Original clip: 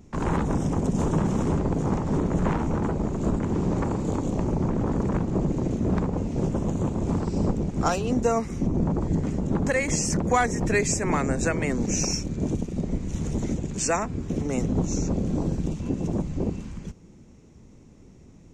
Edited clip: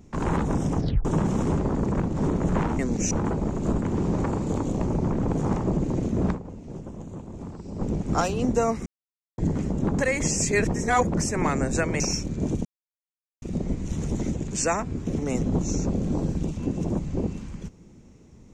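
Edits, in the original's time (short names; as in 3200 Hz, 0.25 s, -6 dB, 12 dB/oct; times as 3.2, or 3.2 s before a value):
0.76 tape stop 0.29 s
1.69–2.05 swap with 4.86–5.32
6–7.52 dip -12 dB, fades 0.31 s exponential
8.54–9.06 mute
10.05–10.97 reverse
11.68–12 move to 2.69
12.65 insert silence 0.77 s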